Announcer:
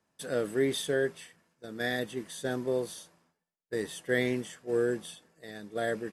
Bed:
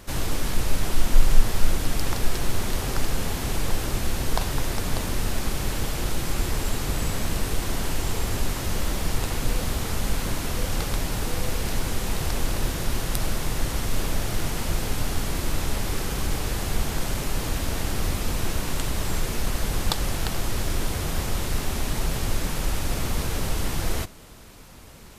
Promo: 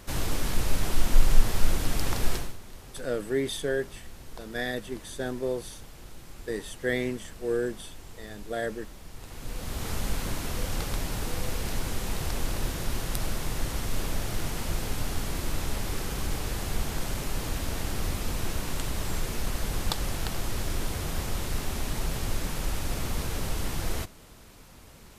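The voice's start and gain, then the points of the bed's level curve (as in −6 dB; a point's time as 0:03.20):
2.75 s, 0.0 dB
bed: 0:02.35 −2.5 dB
0:02.58 −19.5 dB
0:09.12 −19.5 dB
0:09.88 −4.5 dB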